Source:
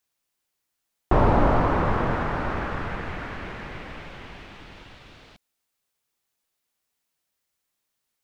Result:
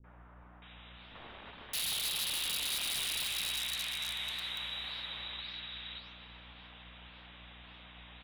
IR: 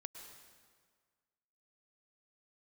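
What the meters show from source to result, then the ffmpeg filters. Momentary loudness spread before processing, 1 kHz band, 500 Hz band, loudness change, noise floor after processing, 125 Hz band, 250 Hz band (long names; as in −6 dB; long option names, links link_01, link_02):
21 LU, −22.5 dB, −27.5 dB, −9.5 dB, −55 dBFS, −25.5 dB, −26.5 dB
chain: -filter_complex "[0:a]aeval=exprs='val(0)+0.5*0.0224*sgn(val(0))':channel_layout=same,lowpass=frequency=3300:width_type=q:width=0.5098,lowpass=frequency=3300:width_type=q:width=0.6013,lowpass=frequency=3300:width_type=q:width=0.9,lowpass=frequency=3300:width_type=q:width=2.563,afreqshift=-3900,acompressor=threshold=-24dB:ratio=8,aeval=exprs='val(0)+0.00355*(sin(2*PI*60*n/s)+sin(2*PI*2*60*n/s)/2+sin(2*PI*3*60*n/s)/3+sin(2*PI*4*60*n/s)/4+sin(2*PI*5*60*n/s)/5)':channel_layout=same,flanger=delay=9.7:depth=9.3:regen=72:speed=1.8:shape=sinusoidal,aeval=exprs='(mod(21.1*val(0)+1,2)-1)/21.1':channel_layout=same,acrossover=split=350|1500[link_01][link_02][link_03];[link_02]adelay=40[link_04];[link_03]adelay=620[link_05];[link_01][link_04][link_05]amix=inputs=3:normalize=0,asplit=2[link_06][link_07];[1:a]atrim=start_sample=2205,asetrate=28224,aresample=44100[link_08];[link_07][link_08]afir=irnorm=-1:irlink=0,volume=4dB[link_09];[link_06][link_09]amix=inputs=2:normalize=0,volume=-8.5dB"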